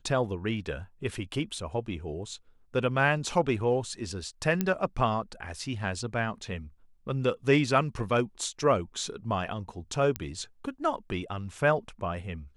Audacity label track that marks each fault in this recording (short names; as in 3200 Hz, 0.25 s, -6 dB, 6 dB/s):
4.610000	4.610000	pop -13 dBFS
10.160000	10.160000	pop -15 dBFS